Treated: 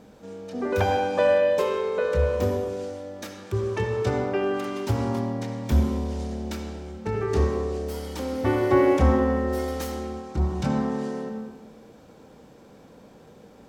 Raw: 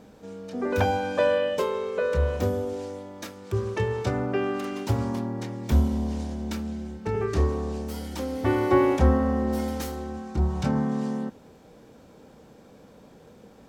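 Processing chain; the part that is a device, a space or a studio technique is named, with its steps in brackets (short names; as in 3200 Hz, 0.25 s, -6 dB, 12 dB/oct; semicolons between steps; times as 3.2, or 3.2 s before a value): filtered reverb send (on a send: HPF 150 Hz 12 dB/oct + LPF 7500 Hz 12 dB/oct + reverb RT60 1.3 s, pre-delay 55 ms, DRR 4 dB)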